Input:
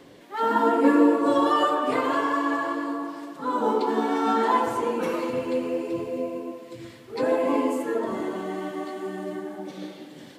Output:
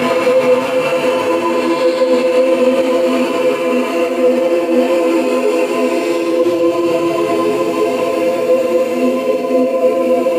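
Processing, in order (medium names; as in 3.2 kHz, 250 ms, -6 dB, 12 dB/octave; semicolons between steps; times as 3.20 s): high-pass 770 Hz 6 dB/octave; Paulstretch 11×, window 0.10 s, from 5.35 s; bucket-brigade echo 194 ms, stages 2048, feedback 84%, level -9 dB; loudness maximiser +27.5 dB; detune thickener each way 13 cents; trim -1.5 dB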